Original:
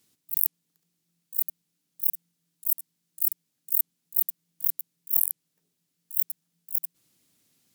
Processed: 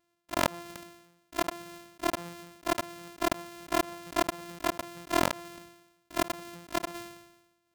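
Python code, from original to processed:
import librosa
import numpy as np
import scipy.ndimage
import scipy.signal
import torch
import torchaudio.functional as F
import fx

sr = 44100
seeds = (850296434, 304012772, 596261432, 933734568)

y = np.r_[np.sort(x[:len(x) // 128 * 128].reshape(-1, 128), axis=1).ravel(), x[len(x) // 128 * 128:]]
y = fx.dynamic_eq(y, sr, hz=790.0, q=0.73, threshold_db=-39.0, ratio=4.0, max_db=7)
y = fx.sustainer(y, sr, db_per_s=58.0)
y = y * librosa.db_to_amplitude(-8.0)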